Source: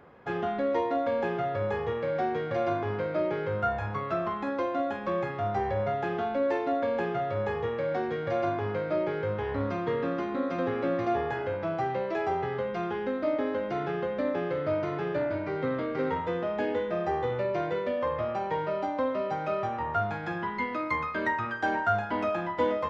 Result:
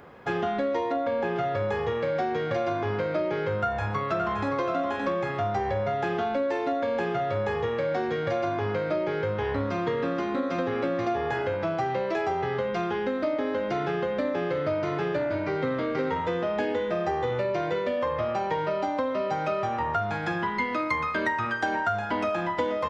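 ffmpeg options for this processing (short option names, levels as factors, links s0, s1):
-filter_complex "[0:a]asettb=1/sr,asplit=3[s0][s1][s2];[s0]atrim=end=0.924[s3];[s1]atrim=start=0.92:end=1.36,asetpts=PTS-STARTPTS,afade=t=in:d=0.004:c=qsin,afade=t=out:st=0.436:d=0.004:c=qsin,highshelf=f=5100:g=-11[s4];[s2]atrim=start=1.356[s5];[s3][s4]acrossfade=d=0.004:c1=hsin:c2=qsin[s6];[s6][s5]acrossfade=d=0.004:c1=qsin:c2=hsin,asplit=2[s7][s8];[s8]afade=t=in:st=3.57:d=0.01,afade=t=out:st=4.57:d=0.01,aecho=0:1:570|1140:0.530884|0.0530884[s9];[s7][s9]amix=inputs=2:normalize=0,acompressor=threshold=0.0355:ratio=6,highshelf=f=4100:g=9,volume=1.78"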